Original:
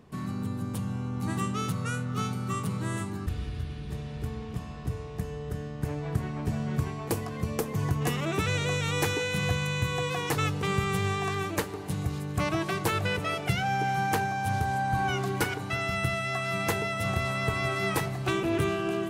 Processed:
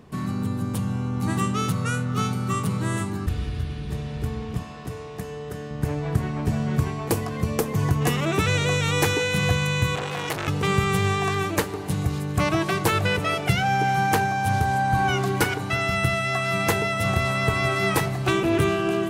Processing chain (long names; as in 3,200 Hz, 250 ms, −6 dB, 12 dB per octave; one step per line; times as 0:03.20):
0:04.63–0:05.71: high-pass filter 280 Hz 6 dB per octave
0:09.95–0:10.48: saturating transformer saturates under 2,100 Hz
level +6 dB